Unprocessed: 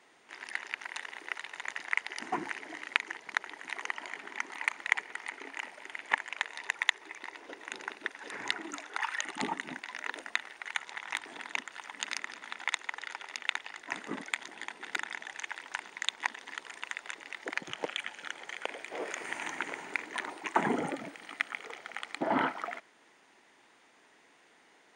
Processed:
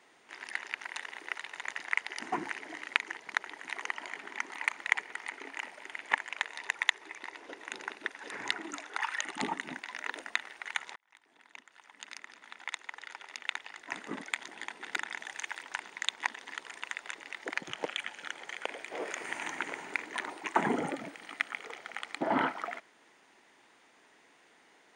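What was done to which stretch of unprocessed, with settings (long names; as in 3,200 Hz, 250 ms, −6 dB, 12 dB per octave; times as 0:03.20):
0:06.60–0:09.58: linear-phase brick-wall low-pass 14,000 Hz
0:10.96–0:14.58: fade in
0:15.17–0:15.63: high-shelf EQ 7,800 Hz +7.5 dB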